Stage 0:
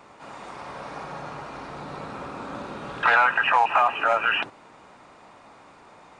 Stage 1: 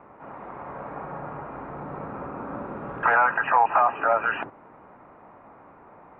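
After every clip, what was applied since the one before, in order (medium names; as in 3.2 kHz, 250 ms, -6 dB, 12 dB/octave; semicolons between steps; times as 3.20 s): Bessel low-pass 1.3 kHz, order 6; trim +2 dB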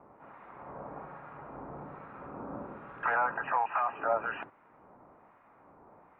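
harmonic tremolo 1.2 Hz, crossover 1.2 kHz; trim -5.5 dB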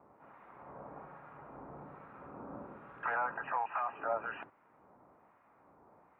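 high-pass 43 Hz; trim -5.5 dB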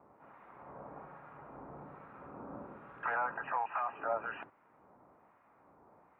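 no audible change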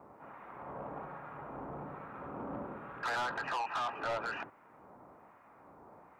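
saturation -38 dBFS, distortion -6 dB; trim +6.5 dB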